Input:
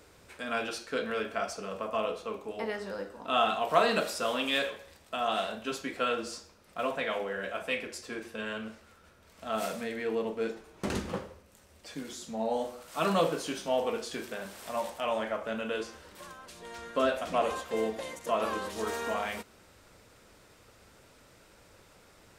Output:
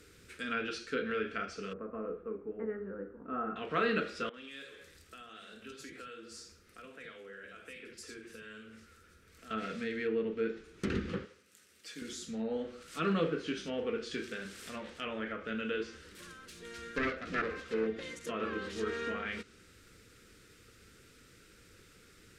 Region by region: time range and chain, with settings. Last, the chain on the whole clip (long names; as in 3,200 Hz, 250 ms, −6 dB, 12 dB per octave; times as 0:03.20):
0:01.73–0:03.56: Bessel low-pass filter 990 Hz, order 6 + parametric band 110 Hz −14.5 dB 0.26 octaves
0:04.29–0:09.51: downward compressor 4 to 1, threshold −44 dBFS + three-band delay without the direct sound mids, highs, lows 50/80 ms, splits 210/3,200 Hz
0:11.25–0:12.02: high-pass filter 130 Hz + low-shelf EQ 460 Hz −10.5 dB
0:16.22–0:17.87: phase distortion by the signal itself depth 0.46 ms + dynamic equaliser 3,200 Hz, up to −6 dB, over −51 dBFS, Q 2.5
whole clip: treble cut that deepens with the level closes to 2,300 Hz, closed at −28 dBFS; flat-topped bell 780 Hz −16 dB 1.1 octaves